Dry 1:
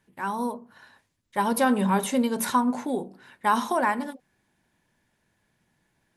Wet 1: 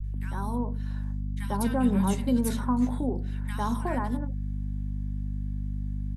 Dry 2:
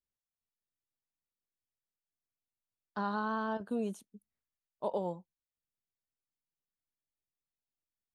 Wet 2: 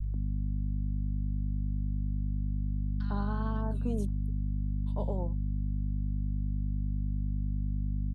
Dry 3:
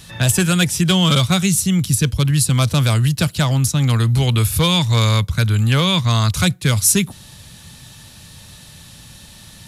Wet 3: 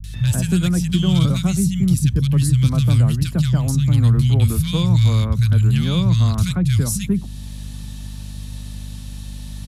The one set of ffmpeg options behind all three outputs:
-filter_complex "[0:a]aeval=exprs='val(0)+0.0224*(sin(2*PI*50*n/s)+sin(2*PI*2*50*n/s)/2+sin(2*PI*3*50*n/s)/3+sin(2*PI*4*50*n/s)/4+sin(2*PI*5*50*n/s)/5)':c=same,acrossover=split=270[a][b];[b]acompressor=threshold=-54dB:ratio=1.5[c];[a][c]amix=inputs=2:normalize=0,acrossover=split=150|1600[d][e][f];[f]adelay=40[g];[e]adelay=140[h];[d][h][g]amix=inputs=3:normalize=0,volume=3.5dB"

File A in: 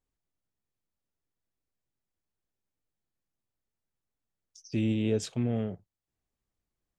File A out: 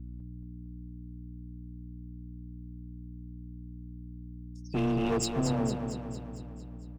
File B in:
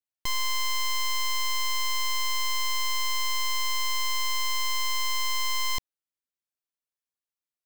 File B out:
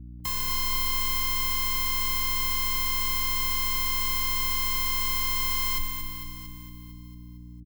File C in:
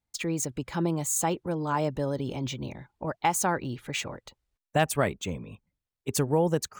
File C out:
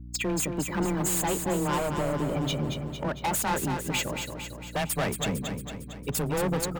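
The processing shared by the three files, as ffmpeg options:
-filter_complex "[0:a]afreqshift=17,afftdn=nr=19:nf=-38,aemphasis=mode=production:type=50fm,alimiter=limit=-15dB:level=0:latency=1:release=91,asoftclip=type=tanh:threshold=-21.5dB,bandreject=f=6k:w=5.3,volume=31dB,asoftclip=hard,volume=-31dB,aeval=exprs='val(0)+0.00501*(sin(2*PI*60*n/s)+sin(2*PI*2*60*n/s)/2+sin(2*PI*3*60*n/s)/3+sin(2*PI*4*60*n/s)/4+sin(2*PI*5*60*n/s)/5)':c=same,asplit=2[a][b];[b]aecho=0:1:227|454|681|908|1135|1362|1589|1816:0.473|0.274|0.159|0.0923|0.0535|0.0311|0.018|0.0104[c];[a][c]amix=inputs=2:normalize=0,volume=5.5dB"

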